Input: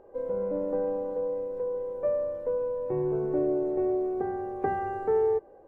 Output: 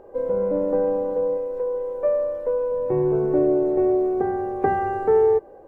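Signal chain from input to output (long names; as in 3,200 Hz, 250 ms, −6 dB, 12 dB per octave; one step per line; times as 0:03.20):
0:01.37–0:02.72: parametric band 140 Hz −11.5 dB 1.7 octaves
level +7.5 dB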